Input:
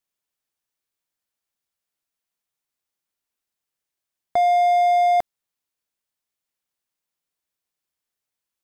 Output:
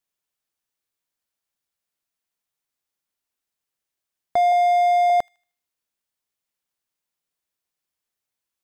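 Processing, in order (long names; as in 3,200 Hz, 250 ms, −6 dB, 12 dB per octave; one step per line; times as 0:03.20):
0:04.52–0:05.10: high-pass filter 390 Hz
on a send: delay with a high-pass on its return 77 ms, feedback 38%, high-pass 2,200 Hz, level −23.5 dB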